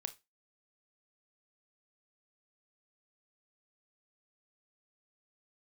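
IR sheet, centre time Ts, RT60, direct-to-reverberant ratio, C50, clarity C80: 5 ms, 0.20 s, 9.5 dB, 18.0 dB, 27.0 dB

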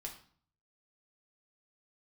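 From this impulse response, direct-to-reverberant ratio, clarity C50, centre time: 0.5 dB, 9.0 dB, 17 ms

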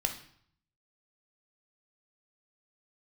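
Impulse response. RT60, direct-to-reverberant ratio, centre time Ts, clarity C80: 0.60 s, 3.5 dB, 15 ms, 13.0 dB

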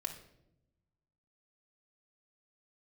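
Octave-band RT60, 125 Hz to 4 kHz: 1.7, 1.4, 1.0, 0.65, 0.60, 0.55 seconds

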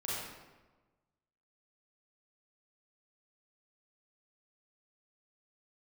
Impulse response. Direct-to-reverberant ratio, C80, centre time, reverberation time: −8.0 dB, 0.0 dB, 100 ms, 1.2 s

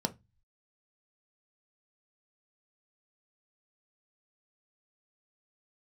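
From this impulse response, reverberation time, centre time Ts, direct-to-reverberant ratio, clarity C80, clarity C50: 0.20 s, 5 ms, 6.5 dB, 31.0 dB, 20.0 dB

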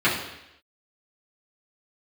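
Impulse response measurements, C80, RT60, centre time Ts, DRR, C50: 8.0 dB, 0.85 s, 40 ms, −10.5 dB, 5.0 dB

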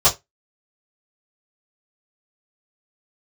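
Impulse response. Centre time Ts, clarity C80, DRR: 17 ms, 25.5 dB, −11.5 dB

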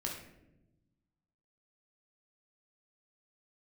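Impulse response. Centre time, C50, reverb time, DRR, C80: 39 ms, 4.0 dB, 0.95 s, −1.5 dB, 7.5 dB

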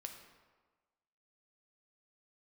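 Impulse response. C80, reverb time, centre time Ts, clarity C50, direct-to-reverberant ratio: 8.0 dB, 1.4 s, 29 ms, 6.5 dB, 3.5 dB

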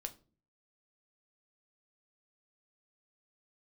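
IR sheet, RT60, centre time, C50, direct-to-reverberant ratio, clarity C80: non-exponential decay, 5 ms, 17.5 dB, 6.0 dB, 23.5 dB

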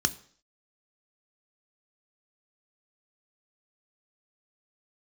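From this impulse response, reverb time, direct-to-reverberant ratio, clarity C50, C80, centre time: 0.55 s, 10.0 dB, 18.5 dB, 21.5 dB, 4 ms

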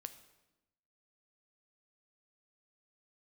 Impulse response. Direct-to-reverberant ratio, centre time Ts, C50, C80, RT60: 9.5 dB, 8 ms, 12.5 dB, 14.5 dB, 1.0 s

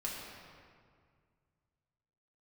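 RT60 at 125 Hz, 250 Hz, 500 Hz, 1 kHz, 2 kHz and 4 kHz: 2.9, 2.3, 2.1, 2.0, 1.7, 1.3 seconds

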